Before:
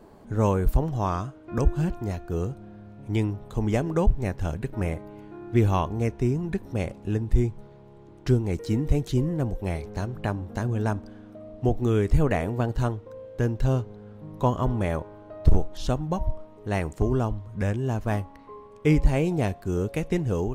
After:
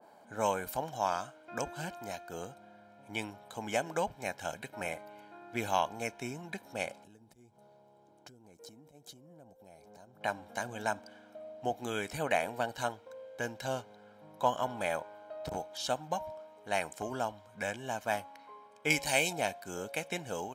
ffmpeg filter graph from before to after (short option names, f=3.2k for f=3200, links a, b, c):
-filter_complex "[0:a]asettb=1/sr,asplit=3[a][b][c];[a]atrim=end=7.044[d];[b]atrim=start=7.04:end=10.21,asetpts=PTS-STARTPTS,afade=t=in:d=0.004:c=qsin,afade=t=out:st=3.166:d=0.004:c=qsin,equalizer=f=2k:w=0.64:g=-11,acompressor=threshold=-37dB:ratio=8:attack=3.2:release=140:knee=1:detection=peak[e];[c]atrim=start=10.206[f];[d][e]acrossfade=d=0.004:c1=hsin:c2=qsin[g];[g][f]acrossfade=d=0.004:c1=qsin:c2=hsin,asettb=1/sr,asplit=3[h][i][j];[h]atrim=end=18.904[k];[i]atrim=start=18.9:end=19.33,asetpts=PTS-STARTPTS,afade=t=in:d=0.004:c=qsin,afade=t=out:st=0.426:d=0.004:c=qsin,highshelf=f=2.2k:g=11,bandreject=f=1.2k:w=5.3[l];[j]atrim=start=19.326[m];[k][l]acrossfade=d=0.004:c1=hsin:c2=qsin[n];[n][m]acrossfade=d=0.004:c1=qsin:c2=hsin,highpass=420,aecho=1:1:1.3:0.62,adynamicequalizer=threshold=0.00631:dfrequency=1800:dqfactor=0.7:tfrequency=1800:tqfactor=0.7:attack=5:release=100:ratio=0.375:range=3:mode=boostabove:tftype=highshelf,volume=-4dB"